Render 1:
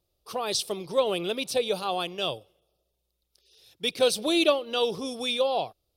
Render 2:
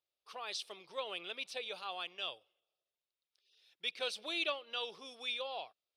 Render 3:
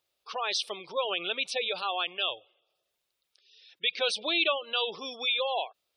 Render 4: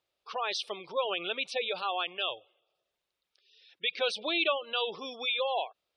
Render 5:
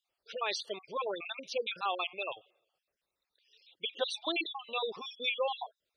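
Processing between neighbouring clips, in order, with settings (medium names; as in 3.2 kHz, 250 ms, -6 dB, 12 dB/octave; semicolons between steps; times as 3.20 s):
band-pass filter 2.1 kHz, Q 1.1; trim -6 dB
in parallel at 0 dB: peak limiter -33 dBFS, peak gain reduction 11 dB; on the sum: spectral gate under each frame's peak -20 dB strong; trim +6.5 dB
low-pass 3.1 kHz 6 dB/octave
random holes in the spectrogram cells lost 48%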